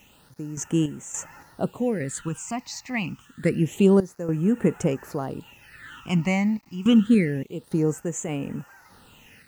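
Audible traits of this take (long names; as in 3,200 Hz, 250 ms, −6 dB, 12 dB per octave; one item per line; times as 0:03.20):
sample-and-hold tremolo, depth 85%
a quantiser's noise floor 10 bits, dither none
phaser sweep stages 8, 0.27 Hz, lowest notch 430–4,400 Hz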